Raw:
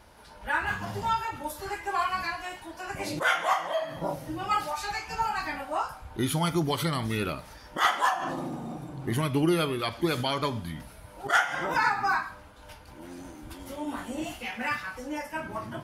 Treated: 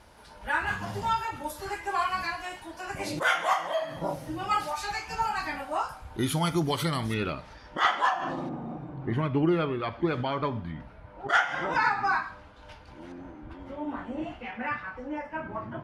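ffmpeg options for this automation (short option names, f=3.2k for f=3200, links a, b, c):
-af "asetnsamples=n=441:p=0,asendcmd='7.14 lowpass f 4400;8.49 lowpass f 2000;11.29 lowpass f 4800;13.12 lowpass f 1900',lowpass=12k"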